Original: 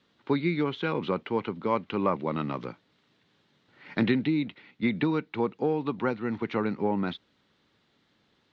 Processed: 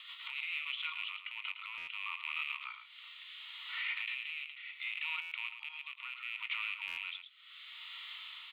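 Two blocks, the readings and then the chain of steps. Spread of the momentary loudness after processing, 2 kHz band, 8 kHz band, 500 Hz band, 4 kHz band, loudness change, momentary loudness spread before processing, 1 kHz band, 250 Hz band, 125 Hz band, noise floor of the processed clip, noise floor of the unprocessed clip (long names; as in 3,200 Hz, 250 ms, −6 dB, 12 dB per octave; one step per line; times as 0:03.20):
11 LU, +0.5 dB, can't be measured, below −40 dB, +3.0 dB, −10.5 dB, 8 LU, −16.5 dB, below −40 dB, below −40 dB, −56 dBFS, −70 dBFS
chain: loose part that buzzes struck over −35 dBFS, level −22 dBFS
Chebyshev high-pass filter 910 Hz, order 8
flat-topped bell 2,100 Hz +13.5 dB
harmonic and percussive parts rebalanced harmonic +7 dB
high-shelf EQ 3,700 Hz +8 dB
downward compressor 4 to 1, threshold −41 dBFS, peak gain reduction 24.5 dB
brickwall limiter −34 dBFS, peak gain reduction 14 dB
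rotating-speaker cabinet horn 6.7 Hz, later 0.7 Hz, at 0:00.85
phaser with its sweep stopped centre 1,600 Hz, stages 6
double-tracking delay 22 ms −14 dB
single-tap delay 110 ms −9 dB
buffer that repeats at 0:01.77/0:05.21/0:06.87, samples 512, times 8
level +9.5 dB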